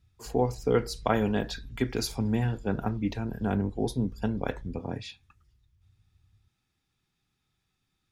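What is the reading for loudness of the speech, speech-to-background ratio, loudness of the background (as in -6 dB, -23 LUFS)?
-30.0 LUFS, 18.0 dB, -48.0 LUFS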